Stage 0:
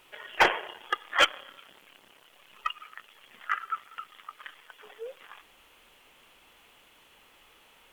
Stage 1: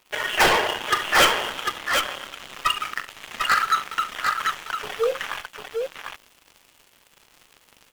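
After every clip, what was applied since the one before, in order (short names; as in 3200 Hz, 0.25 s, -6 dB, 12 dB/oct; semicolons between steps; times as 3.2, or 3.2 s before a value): sample leveller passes 5; tapped delay 41/69/748 ms -11.5/-16.5/-4.5 dB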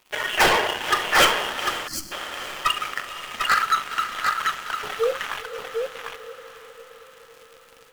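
diffused feedback echo 0.49 s, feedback 60%, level -13 dB; spectral gain 1.87–2.12, 350–4100 Hz -22 dB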